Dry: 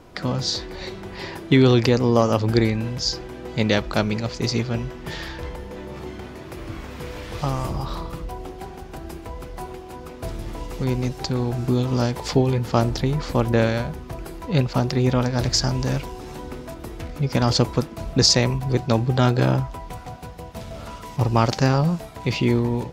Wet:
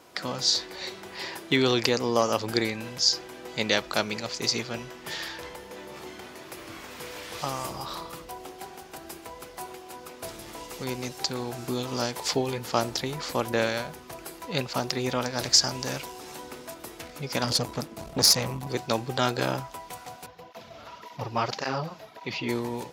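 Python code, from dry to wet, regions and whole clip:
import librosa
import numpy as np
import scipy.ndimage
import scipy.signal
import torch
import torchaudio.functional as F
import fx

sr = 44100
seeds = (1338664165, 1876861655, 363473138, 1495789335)

y = fx.chain(x, sr, fx.low_shelf(hz=460.0, db=10.5),
    fx.tube_stage(drive_db=12.0, bias=0.75), at=(17.44, 18.67))
y = fx.chain(y, sr, fx.moving_average(points=5),
    fx.flanger_cancel(hz=1.8, depth_ms=6.3), at=(20.26, 22.49))
y = fx.highpass(y, sr, hz=570.0, slope=6)
y = fx.high_shelf(y, sr, hz=4700.0, db=8.0)
y = y * librosa.db_to_amplitude(-2.0)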